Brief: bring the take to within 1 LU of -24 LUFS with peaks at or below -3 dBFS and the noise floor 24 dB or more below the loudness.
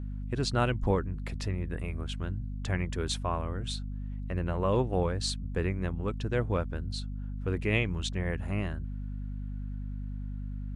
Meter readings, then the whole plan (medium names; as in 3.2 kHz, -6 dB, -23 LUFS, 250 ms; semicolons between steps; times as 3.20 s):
hum 50 Hz; highest harmonic 250 Hz; hum level -34 dBFS; loudness -33.0 LUFS; peak level -13.5 dBFS; loudness target -24.0 LUFS
-> de-hum 50 Hz, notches 5; trim +9 dB